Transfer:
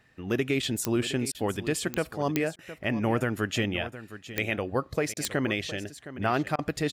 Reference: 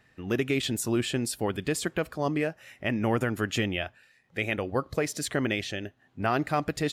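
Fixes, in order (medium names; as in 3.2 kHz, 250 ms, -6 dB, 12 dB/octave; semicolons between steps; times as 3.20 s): de-click; interpolate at 1.32/2.56/5.14/6.56 s, 26 ms; inverse comb 714 ms -14 dB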